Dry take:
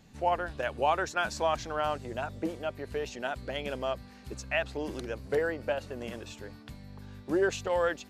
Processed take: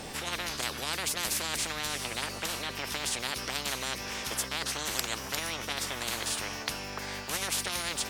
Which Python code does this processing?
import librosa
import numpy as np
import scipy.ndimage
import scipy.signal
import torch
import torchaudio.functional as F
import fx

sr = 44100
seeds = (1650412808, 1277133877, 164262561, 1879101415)

y = fx.formant_shift(x, sr, semitones=4)
y = fx.spectral_comp(y, sr, ratio=10.0)
y = y * 10.0 ** (4.0 / 20.0)